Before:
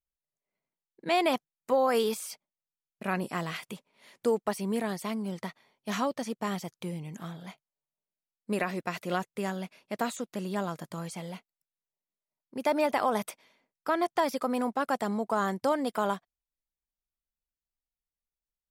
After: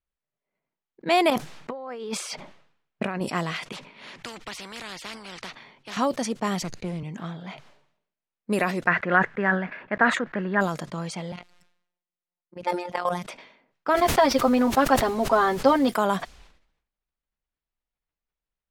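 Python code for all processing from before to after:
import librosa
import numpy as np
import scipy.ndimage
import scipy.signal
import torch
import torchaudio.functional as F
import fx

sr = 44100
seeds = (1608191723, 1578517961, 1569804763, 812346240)

y = fx.chain(x, sr, fx.high_shelf(hz=4100.0, db=-7.5),
    fx.over_compress(threshold_db=-38.0, ratio=-1.0), at=(1.3, 3.21))
y = fx.chain(y, sr, fx.peak_eq(hz=580.0, db=-7.0, octaves=1.6),
    fx.spectral_comp(ratio=4.0), at=(3.72, 5.97))
y = fx.chain(y, sr, fx.lower_of_two(delay_ms=0.45),
    fx.band_squash(depth_pct=40), at=(6.62, 7.03))
y = fx.chain(y, sr, fx.block_float(bits=7),
    fx.lowpass_res(hz=1700.0, q=5.5), at=(8.87, 10.61))
y = fx.chain(y, sr, fx.robotise(hz=177.0),
    fx.high_shelf(hz=8800.0, db=5.0),
    fx.level_steps(step_db=14), at=(11.32, 13.23))
y = fx.steep_lowpass(y, sr, hz=5400.0, slope=36, at=(13.93, 15.88), fade=0.02)
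y = fx.comb(y, sr, ms=7.5, depth=0.85, at=(13.93, 15.88), fade=0.02)
y = fx.dmg_noise_colour(y, sr, seeds[0], colour='pink', level_db=-51.0, at=(13.93, 15.88), fade=0.02)
y = fx.env_lowpass(y, sr, base_hz=2700.0, full_db=-25.5)
y = fx.sustainer(y, sr, db_per_s=84.0)
y = F.gain(torch.from_numpy(y), 5.5).numpy()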